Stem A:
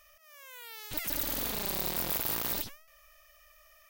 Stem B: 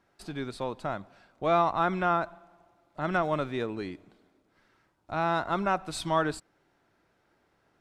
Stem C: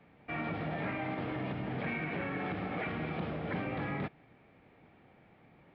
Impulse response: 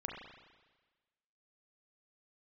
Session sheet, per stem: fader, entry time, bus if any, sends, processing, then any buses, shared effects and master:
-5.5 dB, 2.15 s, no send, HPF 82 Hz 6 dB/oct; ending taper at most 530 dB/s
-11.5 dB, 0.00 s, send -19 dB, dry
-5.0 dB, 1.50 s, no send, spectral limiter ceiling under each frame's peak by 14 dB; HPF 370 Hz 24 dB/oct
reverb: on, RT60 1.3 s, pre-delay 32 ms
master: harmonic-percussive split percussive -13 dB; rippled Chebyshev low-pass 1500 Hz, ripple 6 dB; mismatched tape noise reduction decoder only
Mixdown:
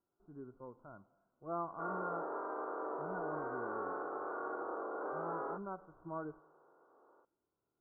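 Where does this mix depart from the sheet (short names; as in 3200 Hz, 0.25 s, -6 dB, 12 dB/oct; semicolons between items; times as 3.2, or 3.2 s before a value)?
stem A -5.5 dB -> -16.0 dB; stem C -5.0 dB -> +5.5 dB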